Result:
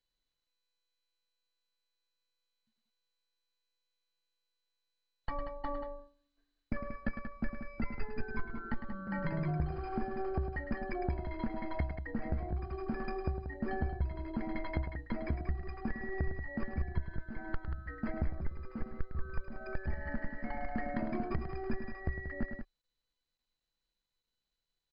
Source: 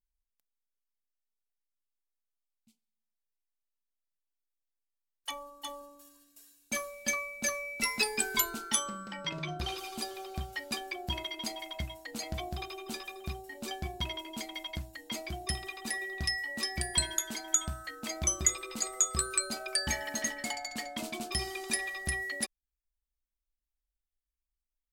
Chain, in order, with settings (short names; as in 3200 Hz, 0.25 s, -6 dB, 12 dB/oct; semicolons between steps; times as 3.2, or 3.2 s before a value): tracing distortion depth 0.096 ms; expander -41 dBFS; tilt -4.5 dB/oct; compressor 8:1, threshold -38 dBFS, peak gain reduction 32.5 dB; ladder low-pass 1900 Hz, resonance 60%; soft clip -37 dBFS, distortion -23 dB; loudspeakers at several distances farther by 36 m -9 dB, 63 m -9 dB; careless resampling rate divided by 6×, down filtered, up hold; gain +16.5 dB; MP2 64 kbps 16000 Hz